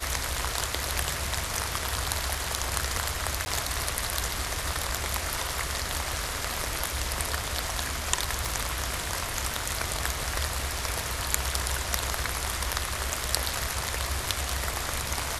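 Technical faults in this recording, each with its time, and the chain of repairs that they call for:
3.45–3.46 s: dropout 10 ms
8.45 s: pop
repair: de-click; interpolate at 3.45 s, 10 ms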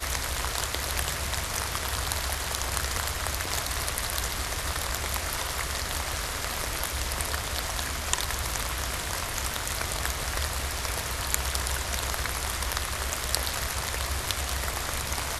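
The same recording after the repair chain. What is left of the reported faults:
nothing left

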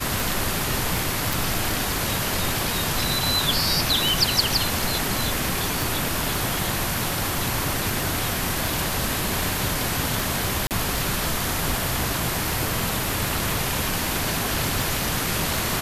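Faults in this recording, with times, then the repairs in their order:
tick 78 rpm
1.33 s: pop
5.82 s: pop
10.67–10.71 s: dropout 38 ms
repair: de-click; interpolate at 10.67 s, 38 ms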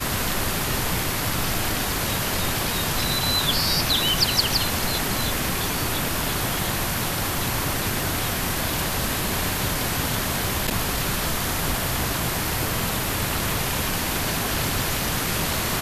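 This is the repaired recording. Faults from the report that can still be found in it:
nothing left

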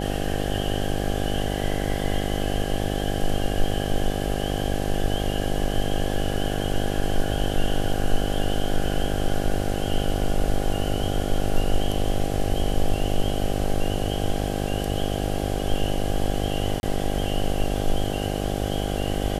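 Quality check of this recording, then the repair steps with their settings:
buzz 50 Hz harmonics 16 -27 dBFS
16.80–16.83 s: dropout 31 ms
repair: de-hum 50 Hz, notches 16; interpolate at 16.80 s, 31 ms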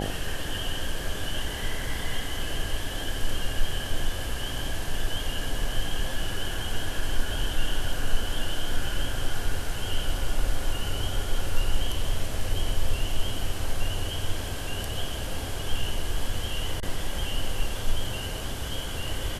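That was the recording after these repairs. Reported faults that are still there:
nothing left

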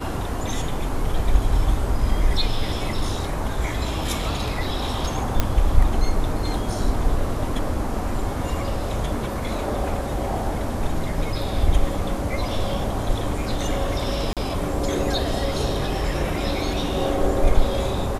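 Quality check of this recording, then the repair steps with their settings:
5.40 s: pop -4 dBFS
14.33–14.37 s: dropout 37 ms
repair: de-click; interpolate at 14.33 s, 37 ms

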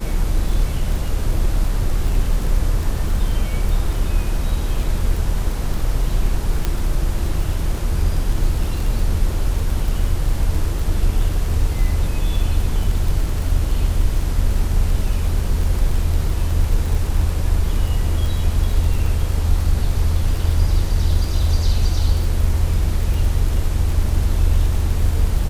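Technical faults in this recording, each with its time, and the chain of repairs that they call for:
crackle 27 per s -23 dBFS
6.65 s: pop -7 dBFS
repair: de-click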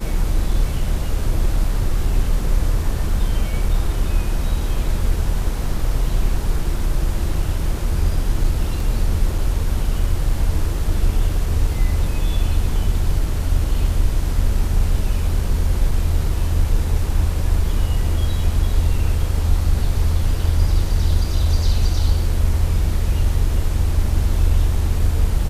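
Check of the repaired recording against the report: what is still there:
6.65 s: pop

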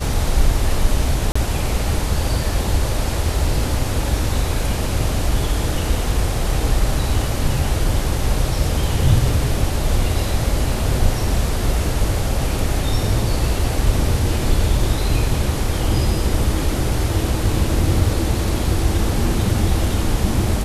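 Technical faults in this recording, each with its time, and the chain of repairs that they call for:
1.32–1.35 s: dropout 35 ms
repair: interpolate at 1.32 s, 35 ms

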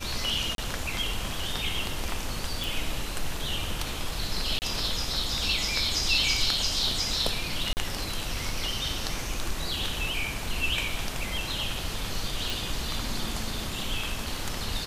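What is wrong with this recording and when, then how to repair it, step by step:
0.55–0.58 s: dropout 32 ms
2.64 s: pop
4.59–4.62 s: dropout 29 ms
7.73–7.77 s: dropout 39 ms
12.50 s: pop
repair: de-click; interpolate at 0.55 s, 32 ms; interpolate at 4.59 s, 29 ms; interpolate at 7.73 s, 39 ms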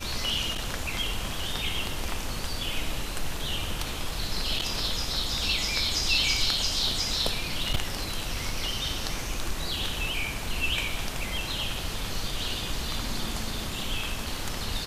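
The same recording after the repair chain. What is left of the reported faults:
nothing left

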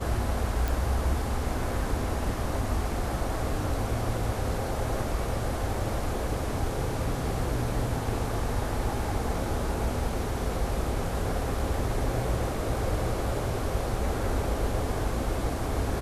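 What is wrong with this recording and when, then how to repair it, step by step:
0.68 s: pop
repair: de-click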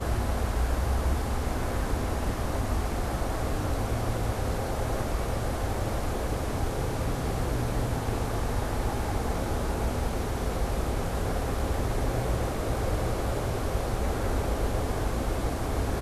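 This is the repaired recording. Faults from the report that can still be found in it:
nothing left

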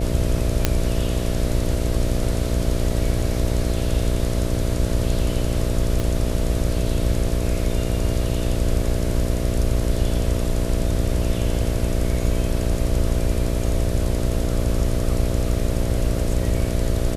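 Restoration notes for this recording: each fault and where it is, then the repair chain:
buzz 60 Hz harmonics 11 -25 dBFS
0.65 s: pop -1 dBFS
6.00 s: pop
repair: de-click; de-hum 60 Hz, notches 11

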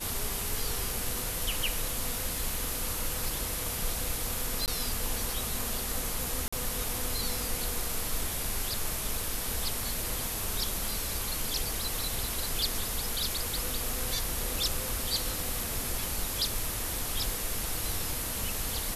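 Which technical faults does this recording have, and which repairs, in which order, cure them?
4.66–4.68 s: dropout 18 ms
6.48–6.53 s: dropout 45 ms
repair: interpolate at 4.66 s, 18 ms; interpolate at 6.48 s, 45 ms

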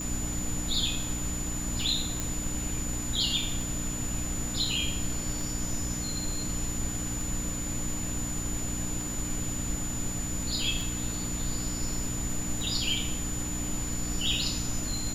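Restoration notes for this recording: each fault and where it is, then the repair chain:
hum 60 Hz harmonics 5 -37 dBFS
tick 33 1/3 rpm -22 dBFS
whine 7 kHz -35 dBFS
2.20 s: pop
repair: de-click; de-hum 60 Hz, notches 5; band-stop 7 kHz, Q 30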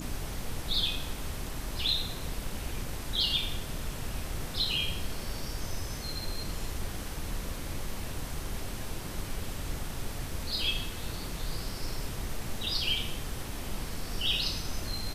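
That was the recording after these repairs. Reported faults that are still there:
nothing left

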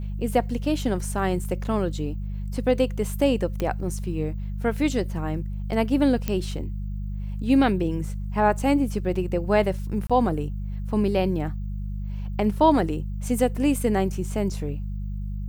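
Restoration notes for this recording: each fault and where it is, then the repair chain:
hum 50 Hz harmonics 4 -30 dBFS
3.60 s: pop -14 dBFS
6.28 s: pop -11 dBFS
10.07–10.10 s: dropout 26 ms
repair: de-click; de-hum 50 Hz, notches 4; interpolate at 10.07 s, 26 ms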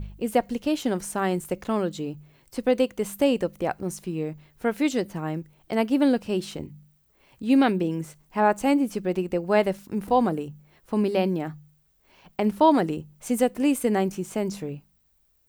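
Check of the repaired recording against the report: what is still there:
nothing left

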